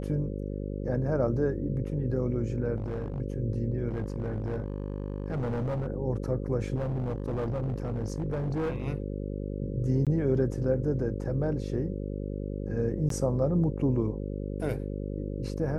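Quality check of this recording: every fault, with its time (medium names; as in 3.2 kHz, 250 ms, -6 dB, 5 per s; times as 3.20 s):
buzz 50 Hz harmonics 11 -34 dBFS
2.76–3.21 s: clipped -28.5 dBFS
3.88–5.88 s: clipped -27 dBFS
6.75–8.88 s: clipped -26.5 dBFS
10.05–10.07 s: dropout 17 ms
13.09–13.10 s: dropout 13 ms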